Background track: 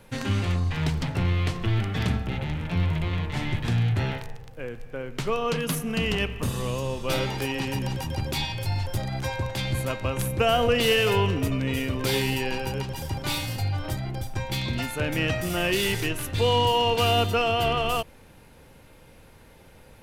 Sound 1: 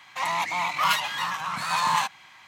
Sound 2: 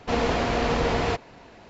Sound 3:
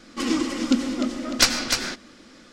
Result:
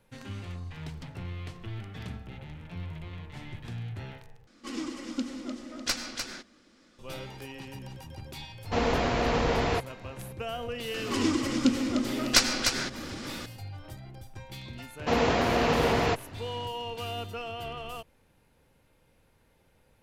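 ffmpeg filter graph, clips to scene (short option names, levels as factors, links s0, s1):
-filter_complex "[3:a]asplit=2[s0][s1];[2:a]asplit=2[s2][s3];[0:a]volume=0.2[s4];[s1]acompressor=mode=upward:threshold=0.0794:ratio=2.5:attack=3.2:release=140:knee=2.83:detection=peak[s5];[s3]highpass=69[s6];[s4]asplit=2[s7][s8];[s7]atrim=end=4.474[s9];[s0]atrim=end=2.52,asetpts=PTS-STARTPTS,volume=0.251[s10];[s8]atrim=start=6.986[s11];[s2]atrim=end=1.69,asetpts=PTS-STARTPTS,volume=0.75,afade=t=in:d=0.004:c=hsin,afade=t=out:st=1.686:d=0.004:c=hsin,adelay=8640[s12];[s5]atrim=end=2.52,asetpts=PTS-STARTPTS,volume=0.668,afade=t=in:d=0.004:c=hsin,afade=t=out:st=2.516:d=0.004:c=hsin,adelay=10940[s13];[s6]atrim=end=1.69,asetpts=PTS-STARTPTS,volume=0.944,afade=t=in:d=0.004:c=hsin,afade=t=out:st=1.686:d=0.004:c=hsin,adelay=14990[s14];[s9][s10]acrossfade=d=0.004:c1=hsin:c2=hsin[s15];[s15][s11]acrossfade=d=0.004:c1=hsin:c2=hsin[s16];[s16][s12][s13][s14]amix=inputs=4:normalize=0"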